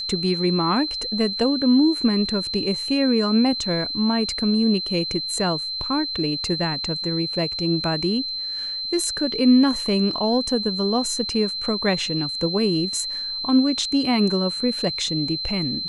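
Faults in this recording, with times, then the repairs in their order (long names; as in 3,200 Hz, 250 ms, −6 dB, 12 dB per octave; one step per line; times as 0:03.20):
whistle 4,100 Hz −26 dBFS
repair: notch filter 4,100 Hz, Q 30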